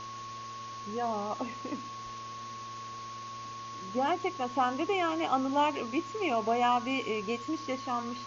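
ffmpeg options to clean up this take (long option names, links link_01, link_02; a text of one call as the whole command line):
ffmpeg -i in.wav -af "adeclick=threshold=4,bandreject=frequency=114.9:width_type=h:width=4,bandreject=frequency=229.8:width_type=h:width=4,bandreject=frequency=344.7:width_type=h:width=4,bandreject=frequency=459.6:width_type=h:width=4,bandreject=frequency=574.5:width_type=h:width=4,bandreject=frequency=1100:width=30,afwtdn=0.005" out.wav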